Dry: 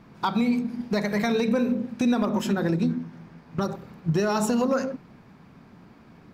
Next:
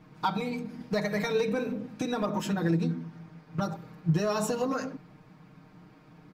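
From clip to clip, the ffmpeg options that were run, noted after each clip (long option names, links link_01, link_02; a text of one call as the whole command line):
ffmpeg -i in.wav -af "aecho=1:1:6.5:0.96,volume=-6dB" out.wav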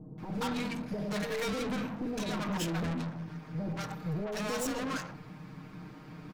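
ffmpeg -i in.wav -filter_complex "[0:a]aeval=exprs='(tanh(89.1*val(0)+0.15)-tanh(0.15))/89.1':channel_layout=same,acrossover=split=660[link_01][link_02];[link_02]adelay=180[link_03];[link_01][link_03]amix=inputs=2:normalize=0,volume=7.5dB" out.wav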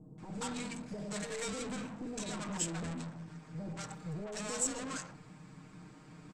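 ffmpeg -i in.wav -af "lowpass=frequency=7900:width_type=q:width=8.2,volume=-6.5dB" out.wav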